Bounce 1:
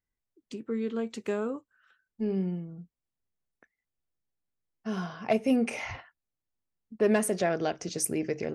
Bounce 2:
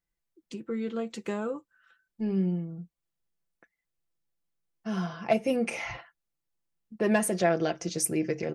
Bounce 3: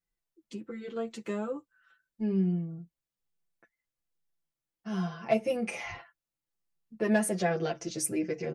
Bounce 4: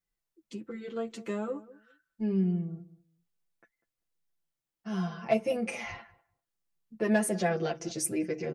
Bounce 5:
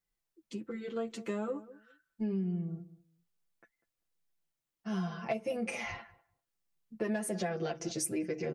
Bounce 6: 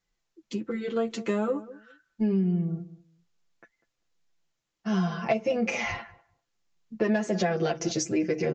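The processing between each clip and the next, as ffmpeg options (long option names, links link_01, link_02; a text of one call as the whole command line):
ffmpeg -i in.wav -af "aecho=1:1:5.9:0.56" out.wav
ffmpeg -i in.wav -filter_complex "[0:a]asplit=2[link_01][link_02];[link_02]adelay=8,afreqshift=-1.2[link_03];[link_01][link_03]amix=inputs=2:normalize=1" out.wav
ffmpeg -i in.wav -filter_complex "[0:a]asplit=2[link_01][link_02];[link_02]adelay=196,lowpass=frequency=870:poles=1,volume=-17dB,asplit=2[link_03][link_04];[link_04]adelay=196,lowpass=frequency=870:poles=1,volume=0.2[link_05];[link_01][link_03][link_05]amix=inputs=3:normalize=0" out.wav
ffmpeg -i in.wav -af "acompressor=threshold=-30dB:ratio=10" out.wav
ffmpeg -i in.wav -af "aresample=16000,aresample=44100,volume=8.5dB" out.wav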